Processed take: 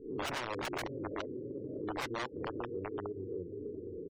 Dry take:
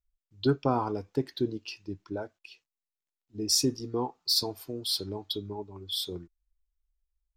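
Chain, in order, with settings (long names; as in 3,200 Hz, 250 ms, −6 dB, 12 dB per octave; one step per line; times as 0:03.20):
peak hold with a rise ahead of every peak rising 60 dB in 0.66 s
Chebyshev low-pass filter 530 Hz, order 4
feedback delay with all-pass diffusion 1,082 ms, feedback 41%, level −13.5 dB
wrap-around overflow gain 27 dB
gate on every frequency bin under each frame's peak −20 dB strong
parametric band 210 Hz −6.5 dB 0.72 octaves
downward compressor 5 to 1, threshold −51 dBFS, peak gain reduction 17.5 dB
low-shelf EQ 150 Hz −6.5 dB
tempo change 1.8×
level +14.5 dB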